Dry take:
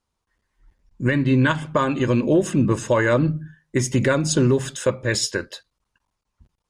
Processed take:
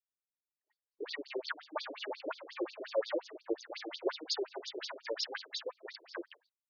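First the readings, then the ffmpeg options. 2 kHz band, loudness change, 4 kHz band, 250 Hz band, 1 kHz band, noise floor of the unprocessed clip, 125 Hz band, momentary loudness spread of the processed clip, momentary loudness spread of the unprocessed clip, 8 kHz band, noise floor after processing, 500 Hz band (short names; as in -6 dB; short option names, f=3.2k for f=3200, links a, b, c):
-18.0 dB, -19.0 dB, -9.0 dB, -24.5 dB, -17.0 dB, -79 dBFS, under -40 dB, 10 LU, 7 LU, -23.0 dB, under -85 dBFS, -16.0 dB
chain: -filter_complex "[0:a]bandreject=f=970:w=12,agate=range=-33dB:threshold=-46dB:ratio=3:detection=peak,acrossover=split=330|450|2700[a][b][c][d];[c]crystalizer=i=3.5:c=0[e];[a][b][e][d]amix=inputs=4:normalize=0,acompressor=threshold=-26dB:ratio=6,flanger=delay=8.4:depth=5.2:regen=7:speed=0.37:shape=sinusoidal,aeval=exprs='max(val(0),0)':c=same,equalizer=f=4.5k:w=6.6:g=12,aphaser=in_gain=1:out_gain=1:delay=4.8:decay=0.62:speed=0.74:type=sinusoidal,aecho=1:1:798:0.562,afftfilt=real='re*between(b*sr/1024,410*pow(4800/410,0.5+0.5*sin(2*PI*5.6*pts/sr))/1.41,410*pow(4800/410,0.5+0.5*sin(2*PI*5.6*pts/sr))*1.41)':imag='im*between(b*sr/1024,410*pow(4800/410,0.5+0.5*sin(2*PI*5.6*pts/sr))/1.41,410*pow(4800/410,0.5+0.5*sin(2*PI*5.6*pts/sr))*1.41)':win_size=1024:overlap=0.75,volume=3dB"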